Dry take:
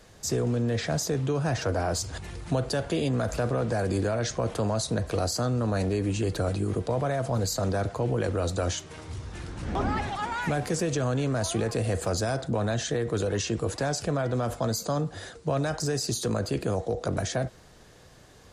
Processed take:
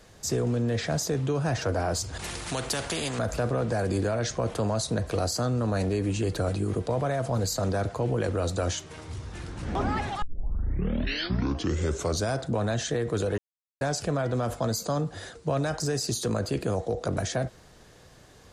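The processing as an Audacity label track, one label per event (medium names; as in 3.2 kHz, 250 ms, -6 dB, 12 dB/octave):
2.190000	3.190000	spectrum-flattening compressor 2:1
10.220000	10.220000	tape start 2.09 s
13.380000	13.810000	mute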